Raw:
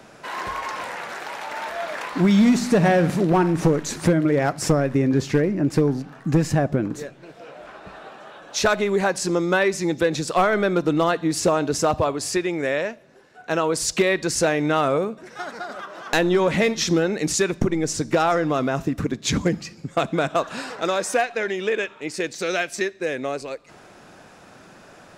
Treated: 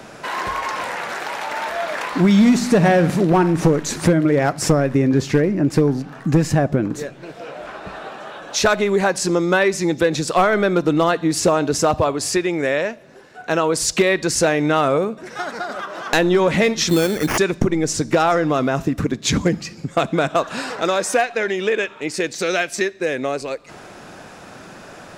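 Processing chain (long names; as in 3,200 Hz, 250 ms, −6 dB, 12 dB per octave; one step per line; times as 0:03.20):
in parallel at −0.5 dB: downward compressor, threshold −34 dBFS, peak gain reduction 19 dB
0:16.89–0:17.38: on the sum: sample-rate reduction 3,900 Hz, jitter 0%
level +2 dB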